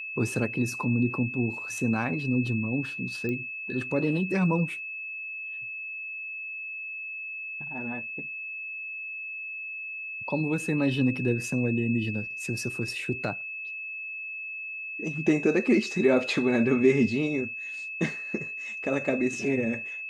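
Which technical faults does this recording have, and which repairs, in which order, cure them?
whine 2.6 kHz -34 dBFS
3.29 s: pop -21 dBFS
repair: de-click; band-stop 2.6 kHz, Q 30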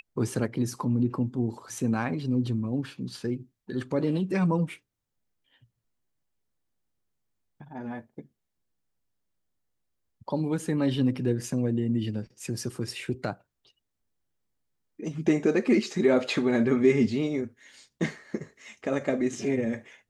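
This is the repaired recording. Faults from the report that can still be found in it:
nothing left

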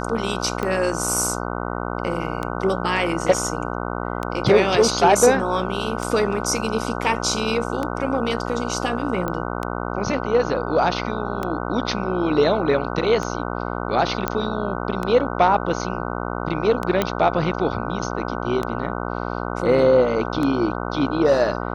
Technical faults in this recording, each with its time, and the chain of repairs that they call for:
buzz 60 Hz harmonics 25 -27 dBFS
tick 33 1/3 rpm -12 dBFS
9.28 s: pop -13 dBFS
14.28 s: pop -7 dBFS
17.02 s: pop -6 dBFS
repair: de-click; de-hum 60 Hz, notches 25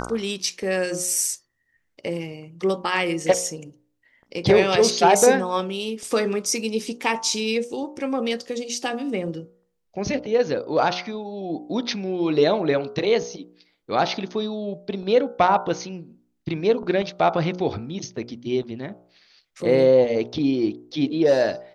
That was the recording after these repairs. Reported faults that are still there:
nothing left

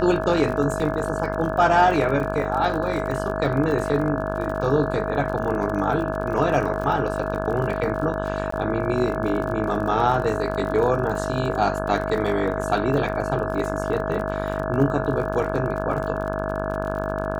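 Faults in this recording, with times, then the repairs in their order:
buzz 50 Hz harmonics 34 -28 dBFS
crackle 43 per s -30 dBFS
whine 640 Hz -28 dBFS
0.80 s: dropout 2.8 ms
8.51–8.52 s: dropout 14 ms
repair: de-click; de-hum 50 Hz, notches 34; band-stop 640 Hz, Q 30; interpolate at 0.80 s, 2.8 ms; interpolate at 8.51 s, 14 ms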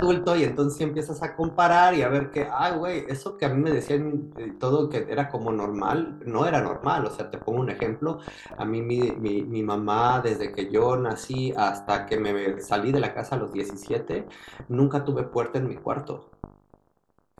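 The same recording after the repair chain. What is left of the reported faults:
nothing left

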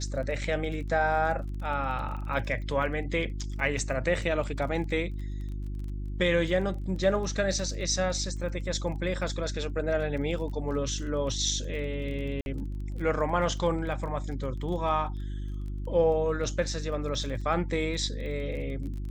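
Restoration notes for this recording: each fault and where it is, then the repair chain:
crackle 21 per s -38 dBFS
hum 50 Hz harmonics 7 -34 dBFS
12.41–12.46 s: dropout 51 ms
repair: de-click; de-hum 50 Hz, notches 7; interpolate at 12.41 s, 51 ms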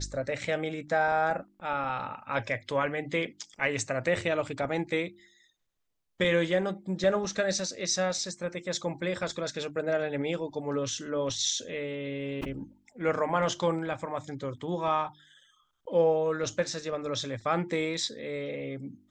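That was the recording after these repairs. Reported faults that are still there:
nothing left

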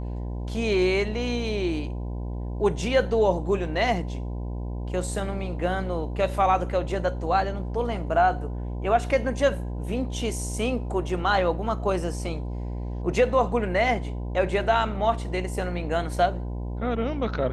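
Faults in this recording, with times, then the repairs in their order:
buzz 60 Hz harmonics 17 -31 dBFS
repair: de-hum 60 Hz, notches 17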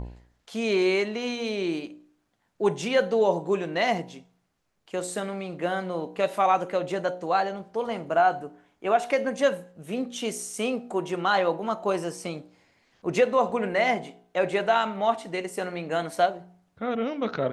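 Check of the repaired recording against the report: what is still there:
nothing left

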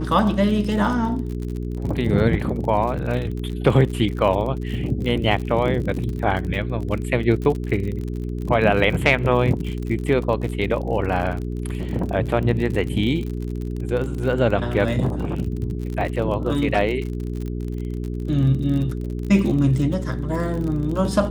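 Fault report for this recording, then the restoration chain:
crackle 47 per s -28 dBFS
hum 60 Hz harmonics 7 -27 dBFS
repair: de-click; de-hum 60 Hz, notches 7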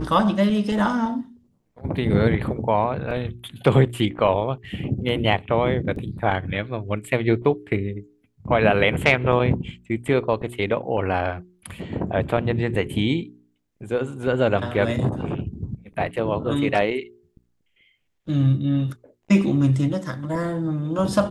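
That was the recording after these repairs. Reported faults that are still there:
nothing left

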